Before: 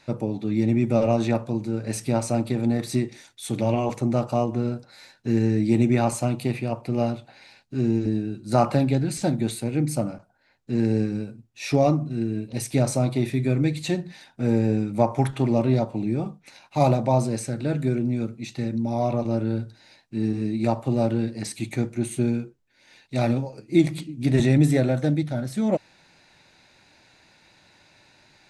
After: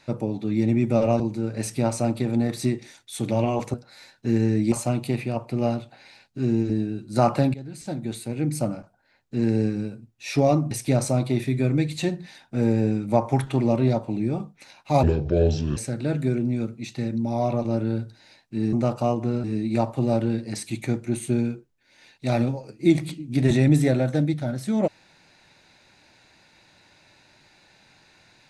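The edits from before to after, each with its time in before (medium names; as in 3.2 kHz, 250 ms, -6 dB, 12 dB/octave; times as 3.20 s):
1.20–1.50 s: delete
4.04–4.75 s: move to 20.33 s
5.73–6.08 s: delete
8.90–10.03 s: fade in, from -18.5 dB
12.07–12.57 s: delete
16.89–17.37 s: speed 65%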